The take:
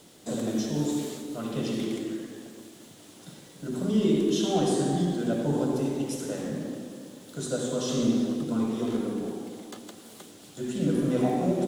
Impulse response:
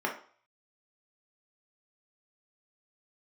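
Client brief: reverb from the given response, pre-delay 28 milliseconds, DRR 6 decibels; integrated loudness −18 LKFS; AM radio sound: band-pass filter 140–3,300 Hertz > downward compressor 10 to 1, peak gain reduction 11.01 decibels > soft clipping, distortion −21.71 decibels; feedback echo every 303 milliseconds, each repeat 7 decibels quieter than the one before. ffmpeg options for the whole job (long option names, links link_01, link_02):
-filter_complex "[0:a]aecho=1:1:303|606|909|1212|1515:0.447|0.201|0.0905|0.0407|0.0183,asplit=2[link_01][link_02];[1:a]atrim=start_sample=2205,adelay=28[link_03];[link_02][link_03]afir=irnorm=-1:irlink=0,volume=-14.5dB[link_04];[link_01][link_04]amix=inputs=2:normalize=0,highpass=140,lowpass=3300,acompressor=threshold=-28dB:ratio=10,asoftclip=threshold=-24dB,volume=16.5dB"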